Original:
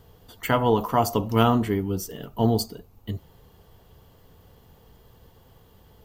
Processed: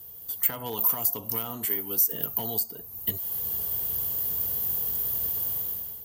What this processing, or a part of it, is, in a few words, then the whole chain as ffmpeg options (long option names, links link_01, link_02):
FM broadcast chain: -filter_complex "[0:a]asettb=1/sr,asplit=3[link_01][link_02][link_03];[link_01]atrim=end=1.654[link_04];[link_02]atrim=start=1.65:end=2.13,asetpts=PTS-STARTPTS,afade=type=in:duration=0.004:curve=qsin,afade=type=out:start_time=0.476:duration=0.004:curve=qsin,highpass=frequency=540:poles=1[link_05];[link_03]atrim=start=2.126[link_06];[link_04][link_05]acrossfade=duration=0.004:curve1=hsin:curve2=qsin[link_07];[link_07][link_06]acrossfade=duration=0.004:curve1=qsin:curve2=hsin,highpass=56,dynaudnorm=framelen=150:gausssize=7:maxgain=15.5dB,acrossover=split=450|2000[link_08][link_09][link_10];[link_08]acompressor=threshold=-31dB:ratio=4[link_11];[link_09]acompressor=threshold=-28dB:ratio=4[link_12];[link_10]acompressor=threshold=-38dB:ratio=4[link_13];[link_11][link_12][link_13]amix=inputs=3:normalize=0,aemphasis=mode=production:type=50fm,alimiter=limit=-16dB:level=0:latency=1:release=304,asoftclip=type=hard:threshold=-20dB,lowpass=frequency=15000:width=0.5412,lowpass=frequency=15000:width=1.3066,aemphasis=mode=production:type=50fm,volume=-6.5dB"